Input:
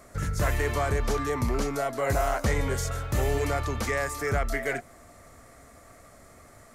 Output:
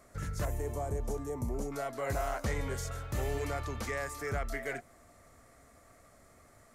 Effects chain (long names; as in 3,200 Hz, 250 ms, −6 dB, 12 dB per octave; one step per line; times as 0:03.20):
0:00.45–0:01.72: flat-topped bell 2,400 Hz −14.5 dB 2.4 octaves
level −8 dB